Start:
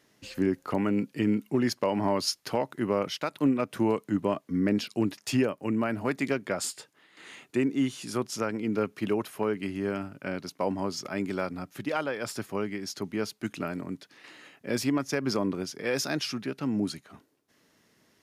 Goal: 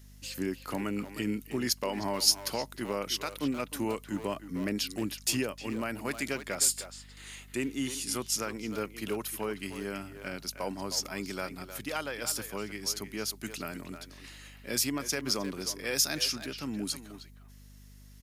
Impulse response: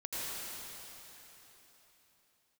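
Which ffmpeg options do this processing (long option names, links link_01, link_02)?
-filter_complex "[0:a]asplit=2[link_01][link_02];[link_02]adelay=310,highpass=300,lowpass=3400,asoftclip=type=hard:threshold=-24dB,volume=-9dB[link_03];[link_01][link_03]amix=inputs=2:normalize=0,crystalizer=i=5.5:c=0,aeval=exprs='val(0)+0.00631*(sin(2*PI*50*n/s)+sin(2*PI*2*50*n/s)/2+sin(2*PI*3*50*n/s)/3+sin(2*PI*4*50*n/s)/4+sin(2*PI*5*50*n/s)/5)':channel_layout=same,volume=-7.5dB"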